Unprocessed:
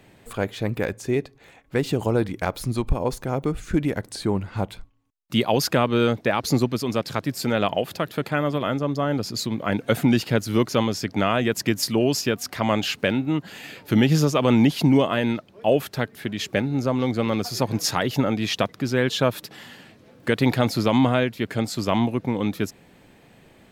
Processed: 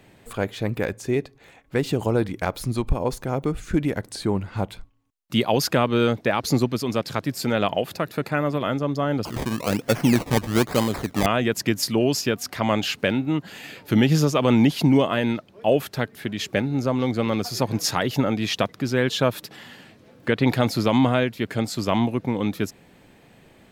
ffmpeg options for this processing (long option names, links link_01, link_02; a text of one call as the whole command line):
ffmpeg -i in.wav -filter_complex "[0:a]asettb=1/sr,asplit=3[link_01][link_02][link_03];[link_01]atrim=end=7.944[link_04];[link_02]atrim=start=7.94:end=8.58,asetpts=PTS-STARTPTS,afade=type=in:duration=0.004:curve=qsin,afade=type=out:start_time=0.636:duration=0.004:curve=qsin,bandreject=frequency=3200:width=5.8[link_05];[link_03]atrim=start=8.576[link_06];[link_04][link_05]acrossfade=duration=0.004:curve1=hsin:curve2=qsin[link_07];[link_07][link_06]acrossfade=duration=0.004:curve1=qsin:curve2=hsin,asettb=1/sr,asplit=3[link_08][link_09][link_10];[link_08]atrim=end=9.254[link_11];[link_09]atrim=start=9.25:end=11.26,asetpts=PTS-STARTPTS,afade=type=in:duration=0.004:curve=qsin,afade=type=out:start_time=2.006:duration=0.004:curve=qsin,acrusher=samples=22:mix=1:aa=0.000001:lfo=1:lforange=22:lforate=1.1[link_12];[link_10]atrim=start=11.256[link_13];[link_11][link_12]acrossfade=duration=0.004:curve1=hsin:curve2=qsin[link_14];[link_14][link_13]acrossfade=duration=0.004:curve1=qsin:curve2=hsin,asettb=1/sr,asplit=3[link_15][link_16][link_17];[link_15]atrim=end=19.564[link_18];[link_16]atrim=start=19.56:end=20.47,asetpts=PTS-STARTPTS,afade=type=in:duration=0.004:curve=qsin,afade=type=out:start_time=0.906:duration=0.004:curve=qsin,acrossover=split=4600[link_19][link_20];[link_20]acompressor=threshold=-54dB:ratio=4:attack=1:release=60[link_21];[link_19][link_21]amix=inputs=2:normalize=0[link_22];[link_17]atrim=start=20.466[link_23];[link_18][link_22]acrossfade=duration=0.004:curve1=hsin:curve2=qsin[link_24];[link_24][link_23]acrossfade=duration=0.004:curve1=qsin:curve2=hsin" out.wav